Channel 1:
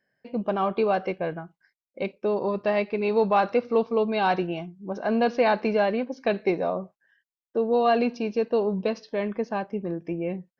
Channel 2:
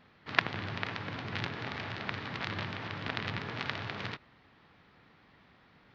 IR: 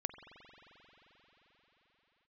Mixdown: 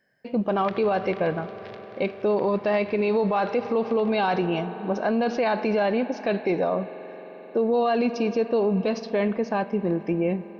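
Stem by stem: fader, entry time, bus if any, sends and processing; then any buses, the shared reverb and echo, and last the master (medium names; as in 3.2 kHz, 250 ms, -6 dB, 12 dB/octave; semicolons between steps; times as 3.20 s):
+3.0 dB, 0.00 s, send -7 dB, none
-0.5 dB, 0.30 s, no send, auto duck -13 dB, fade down 1.95 s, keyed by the first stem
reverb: on, pre-delay 44 ms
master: peak limiter -15.5 dBFS, peak gain reduction 10.5 dB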